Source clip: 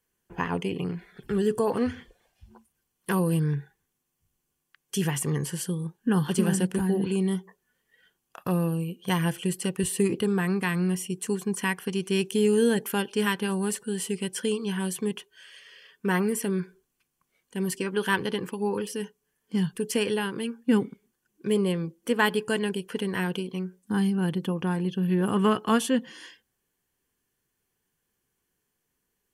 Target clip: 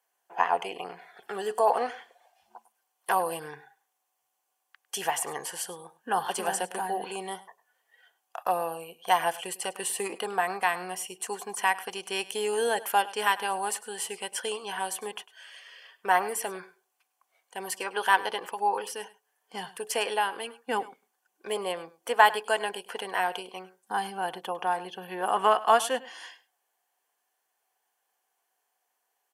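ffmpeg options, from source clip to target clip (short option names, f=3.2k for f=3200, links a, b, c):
-af "highpass=f=730:t=q:w=4.9,aecho=1:1:102:0.119"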